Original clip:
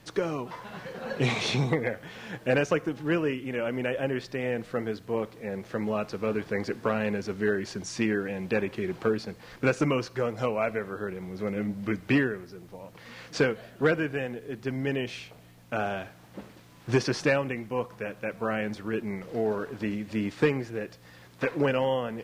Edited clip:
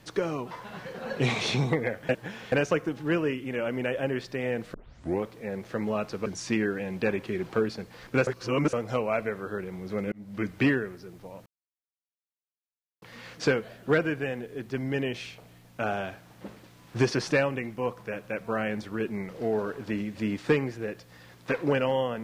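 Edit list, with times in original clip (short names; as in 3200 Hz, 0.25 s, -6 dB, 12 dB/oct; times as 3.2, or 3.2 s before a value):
2.09–2.52 reverse
4.74 tape start 0.49 s
6.26–7.75 cut
9.76–10.22 reverse
11.61–11.96 fade in
12.95 insert silence 1.56 s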